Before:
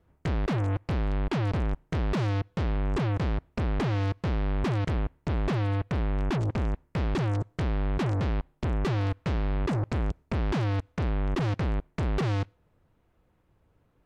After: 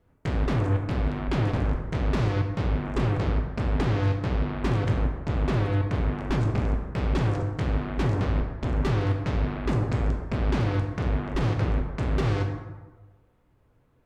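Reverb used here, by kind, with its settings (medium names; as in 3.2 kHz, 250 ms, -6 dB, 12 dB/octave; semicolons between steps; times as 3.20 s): plate-style reverb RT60 1.3 s, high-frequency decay 0.5×, DRR 1.5 dB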